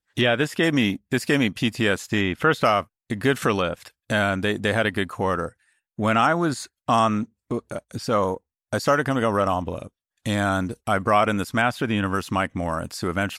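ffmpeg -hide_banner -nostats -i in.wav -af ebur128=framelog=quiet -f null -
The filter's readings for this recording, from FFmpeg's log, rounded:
Integrated loudness:
  I:         -23.2 LUFS
  Threshold: -33.4 LUFS
Loudness range:
  LRA:         2.3 LU
  Threshold: -43.6 LUFS
  LRA low:   -24.6 LUFS
  LRA high:  -22.3 LUFS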